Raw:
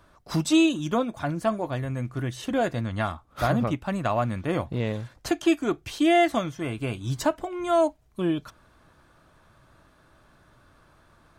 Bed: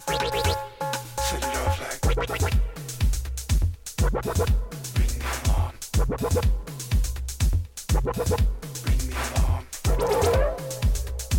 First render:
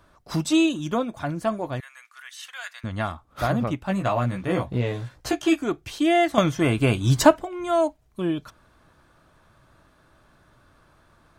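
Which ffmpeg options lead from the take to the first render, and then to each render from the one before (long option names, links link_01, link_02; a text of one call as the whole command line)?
ffmpeg -i in.wav -filter_complex "[0:a]asettb=1/sr,asplit=3[link_01][link_02][link_03];[link_01]atrim=end=1.804[link_04];[link_02]atrim=start=1.8:end=2.84,asetpts=PTS-STARTPTS,afade=type=in:duration=0.004:curve=qsin,afade=type=out:start_time=1.036:duration=0.004:curve=qsin,highpass=frequency=1300:width=0.5412,highpass=frequency=1300:width=1.3066[link_05];[link_03]atrim=start=2.836[link_06];[link_04][link_05]acrossfade=duration=0.004:curve1=hsin:curve2=qsin[link_07];[link_07][link_06]acrossfade=duration=0.004:curve1=qsin:curve2=hsin,asettb=1/sr,asplit=3[link_08][link_09][link_10];[link_08]atrim=end=3.874[link_11];[link_09]atrim=start=3.87:end=5.63,asetpts=PTS-STARTPTS,afade=type=in:duration=0.004:curve=qsin,afade=type=out:start_time=1.756:duration=0.004:curve=qsin,asplit=2[link_12][link_13];[link_13]adelay=16,volume=-2.5dB[link_14];[link_12][link_14]amix=inputs=2:normalize=0,atrim=end_sample=77616[link_15];[link_10]atrim=start=5.626[link_16];[link_11][link_15]acrossfade=duration=0.004:curve1=hsin:curve2=qsin[link_17];[link_17][link_16]acrossfade=duration=0.004:curve1=qsin:curve2=hsin,asplit=3[link_18][link_19][link_20];[link_18]atrim=end=6.382[link_21];[link_19]atrim=start=6.378:end=7.382,asetpts=PTS-STARTPTS,volume=9.5dB[link_22];[link_20]atrim=start=7.378[link_23];[link_21][link_22]acrossfade=duration=0.004:curve1=hsin:curve2=hsin[link_24];[link_24][link_23]acrossfade=duration=0.004:curve1=hsin:curve2=hsin" out.wav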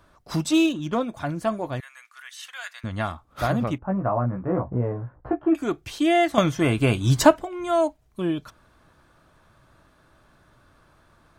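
ffmpeg -i in.wav -filter_complex "[0:a]asettb=1/sr,asplit=3[link_01][link_02][link_03];[link_01]atrim=end=0.514[link_04];[link_02]atrim=start=0.51:end=1.01,asetpts=PTS-STARTPTS,afade=type=in:duration=0.004:curve=qsin,afade=type=out:start_time=0.496:duration=0.004:curve=qsin,adynamicsmooth=sensitivity=7:basefreq=4000[link_05];[link_03]atrim=start=1.006[link_06];[link_04][link_05]acrossfade=duration=0.004:curve1=hsin:curve2=qsin[link_07];[link_07][link_06]acrossfade=duration=0.004:curve1=qsin:curve2=hsin,asettb=1/sr,asplit=3[link_08][link_09][link_10];[link_08]atrim=end=3.784[link_11];[link_09]atrim=start=3.78:end=5.55,asetpts=PTS-STARTPTS,afade=type=in:duration=0.004:curve=qsin,afade=type=out:start_time=1.766:duration=0.004:curve=qsin,lowpass=frequency=1300:width=0.5412,lowpass=frequency=1300:width=1.3066[link_12];[link_10]atrim=start=5.546[link_13];[link_11][link_12]acrossfade=duration=0.004:curve1=hsin:curve2=qsin[link_14];[link_14][link_13]acrossfade=duration=0.004:curve1=qsin:curve2=hsin" out.wav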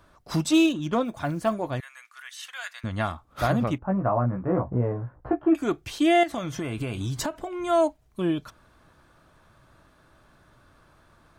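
ffmpeg -i in.wav -filter_complex "[0:a]asettb=1/sr,asplit=3[link_01][link_02][link_03];[link_01]atrim=end=1.054[link_04];[link_02]atrim=start=1.05:end=1.54,asetpts=PTS-STARTPTS,afade=type=in:duration=0.004:curve=qsin,afade=type=out:start_time=0.486:duration=0.004:curve=qsin,acrusher=bits=9:mode=log:mix=0:aa=0.000001[link_05];[link_03]atrim=start=1.536[link_06];[link_04][link_05]acrossfade=duration=0.004:curve1=hsin:curve2=qsin[link_07];[link_07][link_06]acrossfade=duration=0.004:curve1=qsin:curve2=hsin,asettb=1/sr,asplit=3[link_08][link_09][link_10];[link_08]atrim=end=6.234[link_11];[link_09]atrim=start=6.23:end=7.62,asetpts=PTS-STARTPTS,afade=type=in:duration=0.004:curve=qsin,afade=type=out:start_time=1.386:duration=0.004:curve=qsin,acompressor=threshold=-26dB:ratio=8:attack=3.2:release=140:knee=1:detection=peak[link_12];[link_10]atrim=start=7.616[link_13];[link_11][link_12]acrossfade=duration=0.004:curve1=hsin:curve2=qsin[link_14];[link_14][link_13]acrossfade=duration=0.004:curve1=qsin:curve2=hsin" out.wav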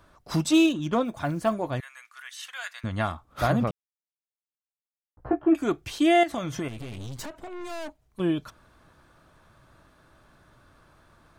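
ffmpeg -i in.wav -filter_complex "[0:a]asettb=1/sr,asplit=3[link_01][link_02][link_03];[link_01]atrim=end=6.684[link_04];[link_02]atrim=start=6.68:end=8.2,asetpts=PTS-STARTPTS,afade=type=in:duration=0.004:curve=qsin,afade=type=out:start_time=1.516:duration=0.004:curve=qsin,aeval=exprs='(tanh(56.2*val(0)+0.7)-tanh(0.7))/56.2':channel_layout=same[link_05];[link_03]atrim=start=8.196[link_06];[link_04][link_05]acrossfade=duration=0.004:curve1=hsin:curve2=qsin[link_07];[link_07][link_06]acrossfade=duration=0.004:curve1=qsin:curve2=hsin,asplit=3[link_08][link_09][link_10];[link_08]atrim=end=3.71,asetpts=PTS-STARTPTS,afade=type=out:start_time=3.706:duration=0.004:curve=hsin[link_11];[link_09]atrim=start=3.71:end=5.17,asetpts=PTS-STARTPTS,volume=0[link_12];[link_10]atrim=start=5.17,asetpts=PTS-STARTPTS,afade=type=in:duration=0.004:curve=hsin[link_13];[link_11][link_12][link_13]concat=n=3:v=0:a=1" out.wav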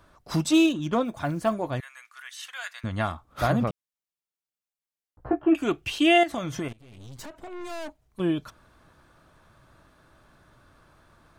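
ffmpeg -i in.wav -filter_complex "[0:a]asettb=1/sr,asplit=3[link_01][link_02][link_03];[link_01]atrim=end=5.434[link_04];[link_02]atrim=start=5.43:end=6.18,asetpts=PTS-STARTPTS,afade=type=in:duration=0.004:curve=qsin,afade=type=out:start_time=0.746:duration=0.004:curve=qsin,equalizer=frequency=2800:width=3.9:gain=12[link_05];[link_03]atrim=start=6.176[link_06];[link_04][link_05]acrossfade=duration=0.004:curve1=hsin:curve2=qsin[link_07];[link_07][link_06]acrossfade=duration=0.004:curve1=qsin:curve2=hsin,asplit=2[link_08][link_09];[link_08]atrim=end=6.73,asetpts=PTS-STARTPTS,afade=type=out:start_time=6.726:duration=0.004:curve=hsin:silence=0.0707946[link_10];[link_09]atrim=start=6.73,asetpts=PTS-STARTPTS,afade=type=in:duration=0.82:silence=0.0707946[link_11];[link_10][link_11]concat=n=2:v=0:a=1" out.wav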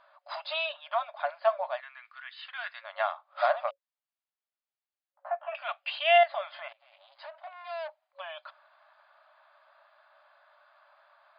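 ffmpeg -i in.wav -af "aemphasis=mode=reproduction:type=bsi,afftfilt=real='re*between(b*sr/4096,550,5000)':imag='im*between(b*sr/4096,550,5000)':win_size=4096:overlap=0.75" out.wav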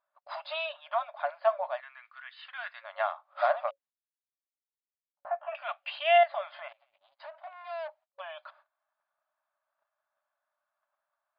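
ffmpeg -i in.wav -af "agate=range=-23dB:threshold=-57dB:ratio=16:detection=peak,highshelf=frequency=3900:gain=-10.5" out.wav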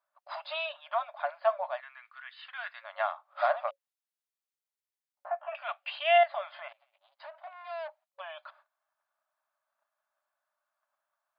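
ffmpeg -i in.wav -af "highpass=490" out.wav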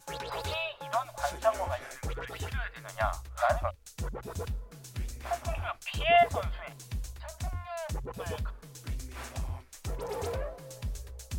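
ffmpeg -i in.wav -i bed.wav -filter_complex "[1:a]volume=-13.5dB[link_01];[0:a][link_01]amix=inputs=2:normalize=0" out.wav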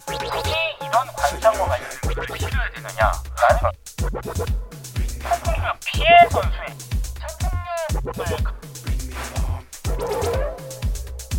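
ffmpeg -i in.wav -af "volume=12dB,alimiter=limit=-3dB:level=0:latency=1" out.wav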